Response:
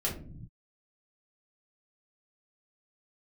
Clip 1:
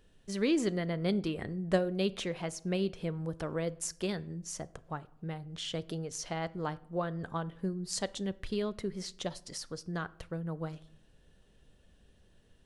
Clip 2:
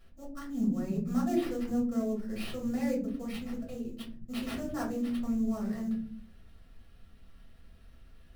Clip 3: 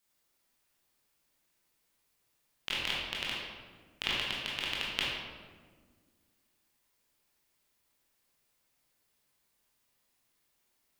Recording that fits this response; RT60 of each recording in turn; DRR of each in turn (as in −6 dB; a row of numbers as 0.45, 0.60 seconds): 2; 0.85 s, non-exponential decay, 1.6 s; 16.5, −5.0, −6.0 decibels